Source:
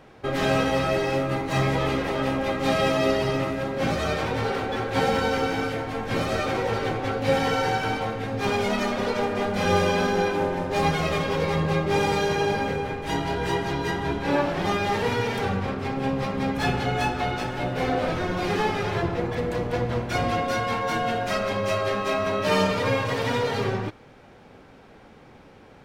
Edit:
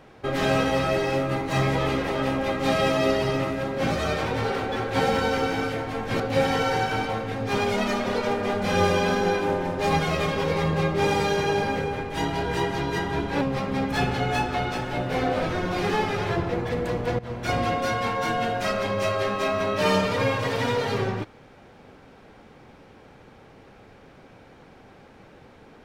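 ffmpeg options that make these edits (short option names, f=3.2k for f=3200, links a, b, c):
-filter_complex "[0:a]asplit=4[a][b][c][d];[a]atrim=end=6.202[e];[b]atrim=start=7.118:end=14.332[f];[c]atrim=start=16.068:end=19.85,asetpts=PTS-STARTPTS,afade=t=out:st=3.778:d=0.004:c=hsin:silence=0.158489[g];[d]atrim=start=19.85,asetpts=PTS-STARTPTS,afade=t=in:d=0.32:silence=0.158489[h];[e][f]acrossfade=d=0.004:c1=hsin:c2=hsin[i];[g][h]concat=n=2:v=0:a=1[j];[i][j]acrossfade=d=0.004:c1=hsin:c2=hsin"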